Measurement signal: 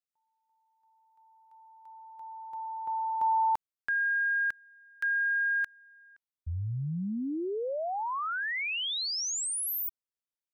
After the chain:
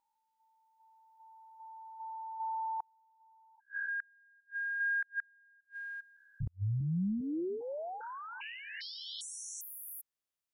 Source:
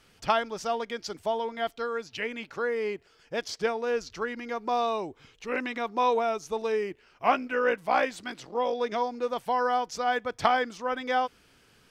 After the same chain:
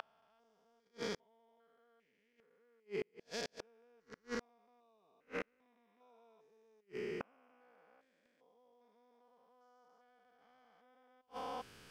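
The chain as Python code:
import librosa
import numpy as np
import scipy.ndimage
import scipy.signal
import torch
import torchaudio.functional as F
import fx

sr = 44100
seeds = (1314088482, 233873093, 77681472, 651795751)

y = fx.spec_steps(x, sr, hold_ms=400)
y = fx.gate_flip(y, sr, shuts_db=-31.0, range_db=-40)
y = y * librosa.db_to_amplitude(3.0)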